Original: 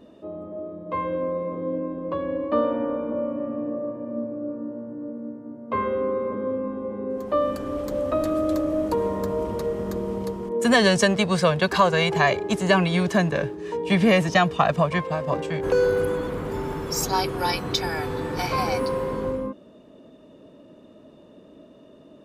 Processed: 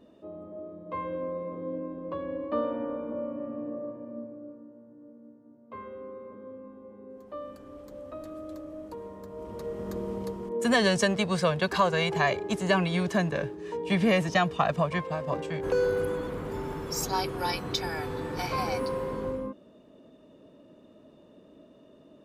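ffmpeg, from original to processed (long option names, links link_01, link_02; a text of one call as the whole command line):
ffmpeg -i in.wav -af "volume=4.5dB,afade=type=out:start_time=3.83:duration=0.84:silence=0.316228,afade=type=in:start_time=9.3:duration=0.7:silence=0.266073" out.wav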